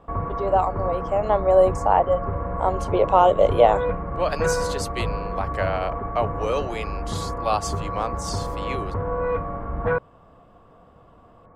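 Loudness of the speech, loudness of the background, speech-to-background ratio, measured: -23.0 LUFS, -28.5 LUFS, 5.5 dB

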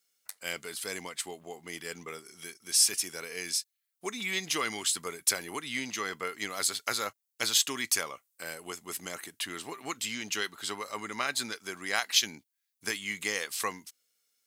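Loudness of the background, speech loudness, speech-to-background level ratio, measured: -48.5 LUFS, -31.5 LUFS, 17.0 dB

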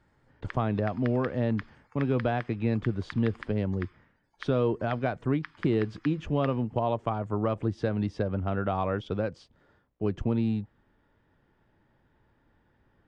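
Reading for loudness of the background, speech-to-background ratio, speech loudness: -46.5 LUFS, 16.5 dB, -30.0 LUFS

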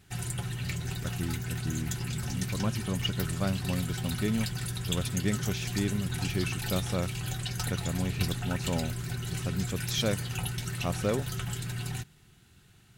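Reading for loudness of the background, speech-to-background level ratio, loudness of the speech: -34.5 LUFS, 0.5 dB, -34.0 LUFS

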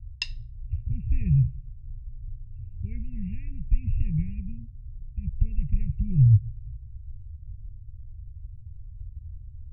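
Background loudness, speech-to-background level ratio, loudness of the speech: -35.0 LUFS, 7.5 dB, -27.5 LUFS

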